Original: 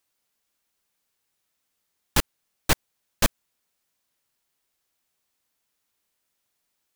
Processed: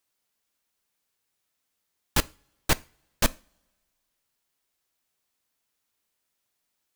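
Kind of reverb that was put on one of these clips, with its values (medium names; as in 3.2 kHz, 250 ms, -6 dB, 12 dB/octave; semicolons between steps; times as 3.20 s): two-slope reverb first 0.33 s, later 1.5 s, from -25 dB, DRR 17.5 dB; trim -2 dB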